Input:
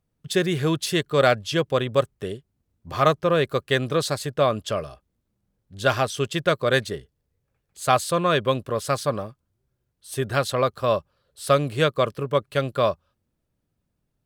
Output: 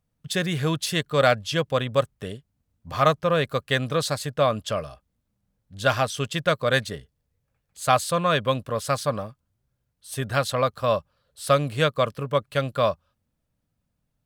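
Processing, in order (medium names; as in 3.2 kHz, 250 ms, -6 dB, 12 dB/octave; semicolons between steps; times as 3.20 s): peaking EQ 370 Hz -11 dB 0.34 oct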